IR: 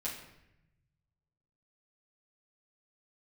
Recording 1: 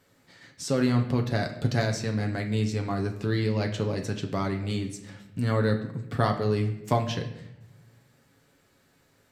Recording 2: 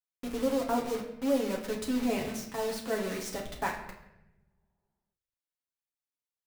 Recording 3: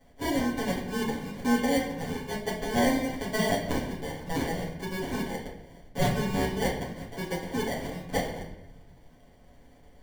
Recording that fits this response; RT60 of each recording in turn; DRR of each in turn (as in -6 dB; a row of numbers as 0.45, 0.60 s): 3; 0.85, 0.85, 0.85 s; 3.0, -2.0, -8.0 dB